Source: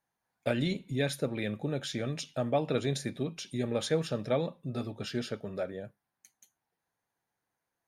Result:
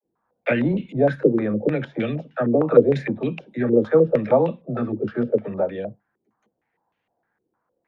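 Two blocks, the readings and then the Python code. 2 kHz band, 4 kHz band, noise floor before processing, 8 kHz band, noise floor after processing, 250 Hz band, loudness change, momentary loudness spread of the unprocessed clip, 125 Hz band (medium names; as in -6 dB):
+8.5 dB, no reading, under -85 dBFS, under -20 dB, -78 dBFS, +12.0 dB, +12.0 dB, 7 LU, +7.5 dB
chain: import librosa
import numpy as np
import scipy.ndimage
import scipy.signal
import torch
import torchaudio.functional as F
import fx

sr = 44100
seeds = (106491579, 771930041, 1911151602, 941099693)

y = fx.small_body(x, sr, hz=(220.0, 320.0, 480.0), ring_ms=45, db=6)
y = fx.dispersion(y, sr, late='lows', ms=53.0, hz=310.0)
y = fx.filter_held_lowpass(y, sr, hz=6.5, low_hz=390.0, high_hz=2800.0)
y = F.gain(torch.from_numpy(y), 6.0).numpy()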